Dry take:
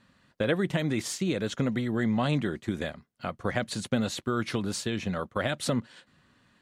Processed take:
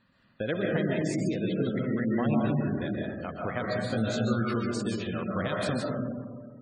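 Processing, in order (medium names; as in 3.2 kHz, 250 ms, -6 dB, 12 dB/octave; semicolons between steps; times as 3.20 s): reverberation RT60 1.8 s, pre-delay 96 ms, DRR -2.5 dB; spectral gate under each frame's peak -25 dB strong; 3.88–4.54 s: doubling 18 ms -2.5 dB; trim -4.5 dB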